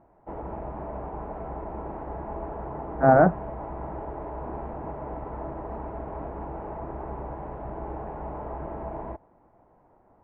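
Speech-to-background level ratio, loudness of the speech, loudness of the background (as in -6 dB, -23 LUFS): 16.5 dB, -20.0 LUFS, -36.5 LUFS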